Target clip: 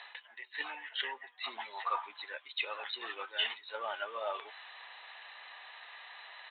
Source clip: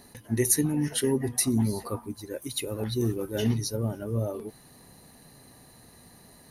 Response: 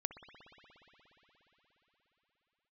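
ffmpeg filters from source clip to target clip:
-af "highpass=frequency=780:width=0.5412,highpass=frequency=780:width=1.3066,tiltshelf=frequency=1400:gain=-8,areverse,acompressor=threshold=-38dB:ratio=10,areverse,aresample=8000,aresample=44100,volume=11.5dB"

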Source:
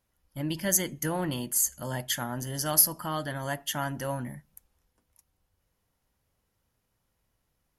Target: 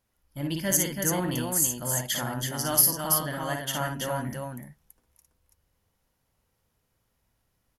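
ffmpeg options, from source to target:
ffmpeg -i in.wav -af "aecho=1:1:56|331:0.596|0.631" out.wav

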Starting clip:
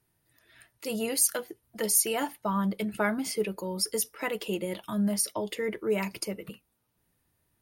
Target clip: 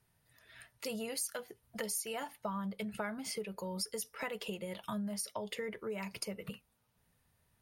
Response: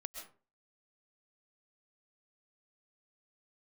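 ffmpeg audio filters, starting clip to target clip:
-af "highshelf=frequency=11000:gain=-7.5,acompressor=threshold=-37dB:ratio=6,equalizer=frequency=320:width=4.3:gain=-14.5,volume=1.5dB"

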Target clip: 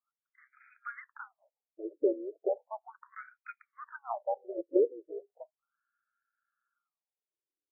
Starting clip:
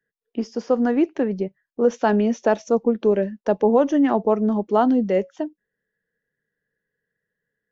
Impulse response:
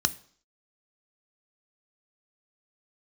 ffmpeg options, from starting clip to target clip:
-af "tremolo=f=130:d=0.462,highpass=frequency=430:width_type=q:width=0.5412,highpass=frequency=430:width_type=q:width=1.307,lowpass=frequency=3300:width_type=q:width=0.5176,lowpass=frequency=3300:width_type=q:width=0.7071,lowpass=frequency=3300:width_type=q:width=1.932,afreqshift=-280,afftfilt=real='re*between(b*sr/1024,410*pow(1800/410,0.5+0.5*sin(2*PI*0.36*pts/sr))/1.41,410*pow(1800/410,0.5+0.5*sin(2*PI*0.36*pts/sr))*1.41)':imag='im*between(b*sr/1024,410*pow(1800/410,0.5+0.5*sin(2*PI*0.36*pts/sr))/1.41,410*pow(1800/410,0.5+0.5*sin(2*PI*0.36*pts/sr))*1.41)':win_size=1024:overlap=0.75,volume=-1.5dB"

